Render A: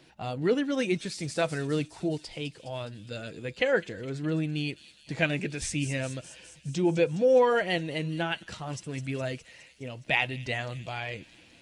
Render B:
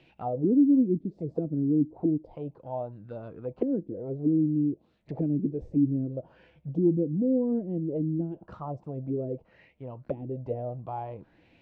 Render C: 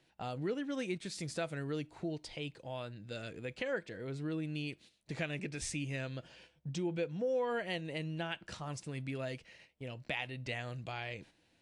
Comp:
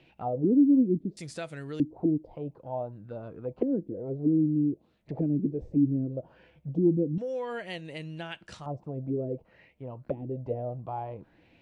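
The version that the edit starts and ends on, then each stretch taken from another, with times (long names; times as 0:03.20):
B
0:01.17–0:01.80: punch in from C
0:07.18–0:08.66: punch in from C
not used: A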